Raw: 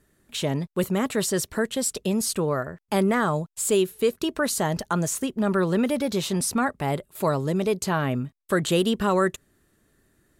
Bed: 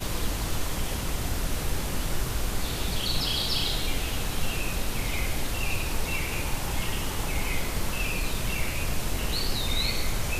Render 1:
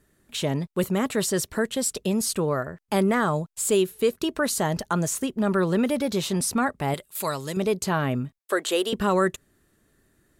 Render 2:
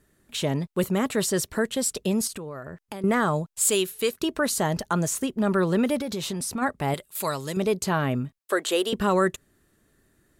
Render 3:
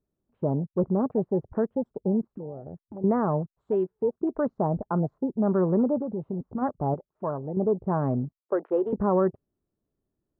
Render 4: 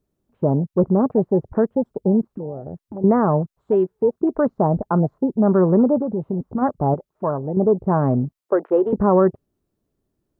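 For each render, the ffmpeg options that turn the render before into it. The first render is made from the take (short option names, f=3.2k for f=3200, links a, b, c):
-filter_complex "[0:a]asettb=1/sr,asplit=3[a][b][c];[a]atrim=end=6.944[d];[b]atrim=start=6.94:end=7.57,asetpts=PTS-STARTPTS,afade=t=in:d=0.004:c=qsin,afade=t=out:st=0.626:d=0.004:c=qsin,tiltshelf=f=1.4k:g=-8.5[e];[c]atrim=start=7.566[f];[d][e]acrossfade=d=0.004:c1=hsin:c2=qsin[g];[g][f]acrossfade=d=0.004:c1=qsin:c2=hsin,asettb=1/sr,asplit=3[h][i][j];[h]atrim=end=8.384[k];[i]atrim=start=8.38:end=8.93,asetpts=PTS-STARTPTS,afade=t=in:d=0.004:c=qsin,afade=t=out:st=0.546:d=0.004:c=qsin,highpass=f=350:w=0.5412,highpass=f=350:w=1.3066[l];[j]atrim=start=8.926[m];[k][l]acrossfade=d=0.004:c1=hsin:c2=qsin[n];[n][m]acrossfade=d=0.004:c1=qsin:c2=hsin"
-filter_complex "[0:a]asettb=1/sr,asplit=3[a][b][c];[a]atrim=end=2.274[d];[b]atrim=start=2.27:end=3.04,asetpts=PTS-STARTPTS,afade=t=in:d=0.004:c=qsin,afade=t=out:st=0.766:d=0.004:c=qsin,acompressor=threshold=-32dB:ratio=12:attack=3.2:release=140:knee=1:detection=peak[e];[c]atrim=start=3.036[f];[d][e]acrossfade=d=0.004:c1=hsin:c2=qsin[g];[g][f]acrossfade=d=0.004:c1=qsin:c2=hsin,asettb=1/sr,asplit=3[h][i][j];[h]atrim=end=3.614[k];[i]atrim=start=3.61:end=4.2,asetpts=PTS-STARTPTS,afade=t=in:d=0.004:c=qsin,afade=t=out:st=0.586:d=0.004:c=qsin,tiltshelf=f=970:g=-5.5[l];[j]atrim=start=4.196[m];[k][l]acrossfade=d=0.004:c1=hsin:c2=qsin[n];[n][m]acrossfade=d=0.004:c1=qsin:c2=hsin,asplit=3[o][p][q];[o]afade=t=out:st=5.97:d=0.02[r];[p]acompressor=threshold=-26dB:ratio=6:attack=3.2:release=140:knee=1:detection=peak,afade=t=in:st=5.97:d=0.02,afade=t=out:st=6.61:d=0.02[s];[q]afade=t=in:st=6.61:d=0.02[t];[r][s][t]amix=inputs=3:normalize=0"
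-af "afwtdn=0.0251,lowpass=f=1k:w=0.5412,lowpass=f=1k:w=1.3066"
-af "volume=7.5dB"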